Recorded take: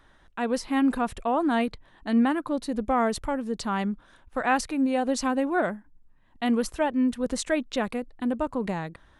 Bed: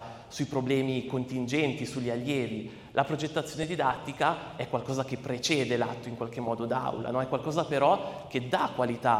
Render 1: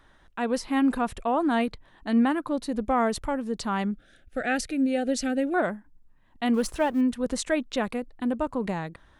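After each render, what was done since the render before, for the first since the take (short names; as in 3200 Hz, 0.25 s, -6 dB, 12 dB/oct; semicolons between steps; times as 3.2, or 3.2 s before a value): 3.91–5.54 Butterworth band-stop 1000 Hz, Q 1.4; 6.54–7.01 G.711 law mismatch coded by mu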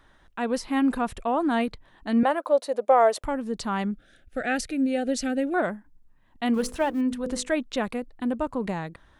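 2.23–3.24 resonant high-pass 570 Hz, resonance Q 4; 6.54–7.5 notches 50/100/150/200/250/300/350/400/450/500 Hz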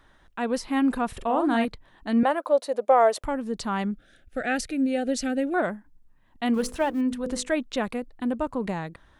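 1.08–1.65 doubler 44 ms -6 dB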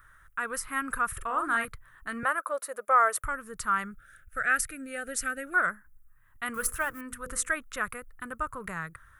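EQ curve 130 Hz 0 dB, 240 Hz -19 dB, 440 Hz -11 dB, 830 Hz -14 dB, 1300 Hz +10 dB, 3000 Hz -8 dB, 4200 Hz -12 dB, 11000 Hz +13 dB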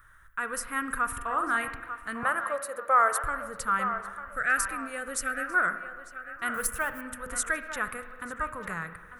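on a send: narrowing echo 0.897 s, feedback 43%, band-pass 1100 Hz, level -9 dB; on the sum: spring tank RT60 1.5 s, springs 41/59 ms, chirp 80 ms, DRR 10 dB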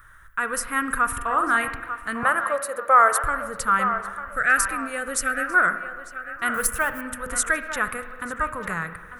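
gain +6.5 dB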